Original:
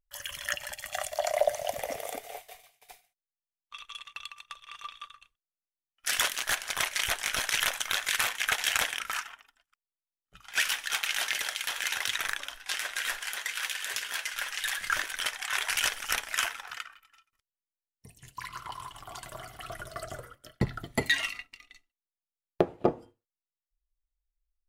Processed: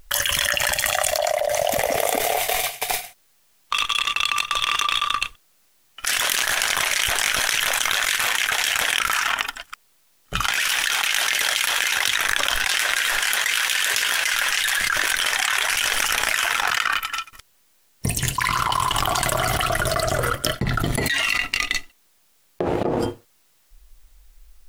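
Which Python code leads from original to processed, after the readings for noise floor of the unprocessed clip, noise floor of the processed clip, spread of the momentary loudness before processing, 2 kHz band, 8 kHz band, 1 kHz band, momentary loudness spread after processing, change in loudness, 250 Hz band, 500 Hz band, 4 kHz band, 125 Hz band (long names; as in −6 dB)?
below −85 dBFS, −61 dBFS, 16 LU, +11.0 dB, +11.0 dB, +13.0 dB, 6 LU, +9.5 dB, +8.5 dB, +9.0 dB, +11.5 dB, +12.5 dB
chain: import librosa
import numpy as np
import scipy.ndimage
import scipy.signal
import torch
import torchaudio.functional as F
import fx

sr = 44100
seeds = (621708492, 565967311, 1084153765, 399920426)

y = fx.leveller(x, sr, passes=1)
y = fx.env_flatten(y, sr, amount_pct=100)
y = y * 10.0 ** (-4.0 / 20.0)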